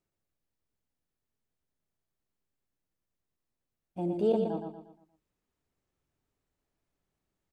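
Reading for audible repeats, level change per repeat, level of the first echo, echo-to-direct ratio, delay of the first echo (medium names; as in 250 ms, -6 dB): 4, -8.0 dB, -5.0 dB, -4.0 dB, 118 ms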